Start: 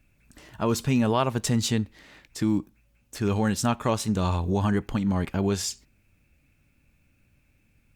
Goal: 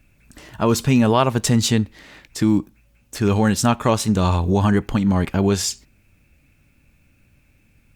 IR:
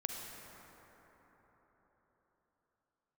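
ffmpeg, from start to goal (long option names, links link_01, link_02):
-af "volume=7dB"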